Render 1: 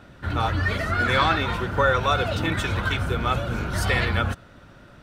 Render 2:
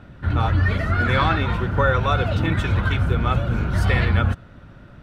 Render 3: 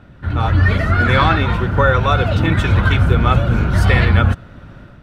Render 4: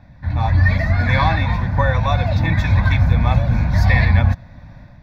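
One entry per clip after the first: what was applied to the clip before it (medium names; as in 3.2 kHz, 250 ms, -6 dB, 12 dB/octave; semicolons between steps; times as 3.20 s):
tone controls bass +7 dB, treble -8 dB
level rider
static phaser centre 2 kHz, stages 8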